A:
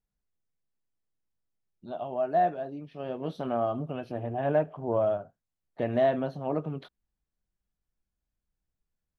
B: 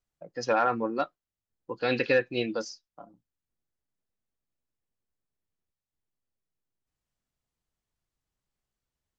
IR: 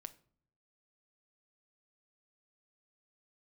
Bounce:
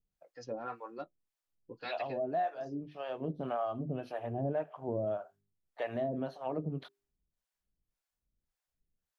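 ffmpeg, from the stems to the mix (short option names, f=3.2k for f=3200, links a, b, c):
-filter_complex "[0:a]bandreject=f=50:t=h:w=6,bandreject=f=100:t=h:w=6,bandreject=f=150:t=h:w=6,bandreject=f=200:t=h:w=6,bandreject=f=250:t=h:w=6,bandreject=f=300:t=h:w=6,bandreject=f=350:t=h:w=6,bandreject=f=400:t=h:w=6,volume=2.5dB,asplit=2[a][b];[1:a]flanger=delay=4.9:depth=2.7:regen=-45:speed=0.85:shape=triangular,volume=-3.5dB[c];[b]apad=whole_len=405144[d];[c][d]sidechaincompress=threshold=-38dB:ratio=8:attack=46:release=237[e];[a][e]amix=inputs=2:normalize=0,acrossover=split=540[f][g];[f]aeval=exprs='val(0)*(1-1/2+1/2*cos(2*PI*1.8*n/s))':c=same[h];[g]aeval=exprs='val(0)*(1-1/2-1/2*cos(2*PI*1.8*n/s))':c=same[i];[h][i]amix=inputs=2:normalize=0,alimiter=level_in=1dB:limit=-24dB:level=0:latency=1:release=342,volume=-1dB"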